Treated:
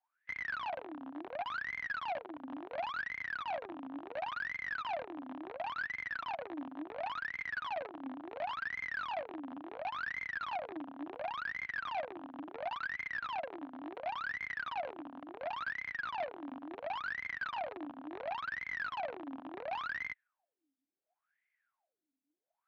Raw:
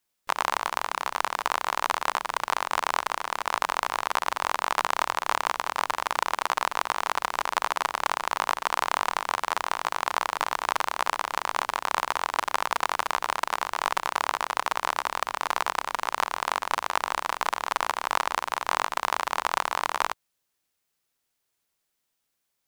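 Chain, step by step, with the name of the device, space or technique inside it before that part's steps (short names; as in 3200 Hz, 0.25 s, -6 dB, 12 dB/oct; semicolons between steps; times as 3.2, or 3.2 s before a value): wah-wah guitar rig (wah 0.71 Hz 260–2100 Hz, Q 21; tube stage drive 52 dB, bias 0.3; speaker cabinet 100–3800 Hz, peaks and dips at 290 Hz +6 dB, 420 Hz -10 dB, 700 Hz +6 dB, 1100 Hz -3 dB, 1600 Hz +5 dB, 2400 Hz +4 dB); gain +15 dB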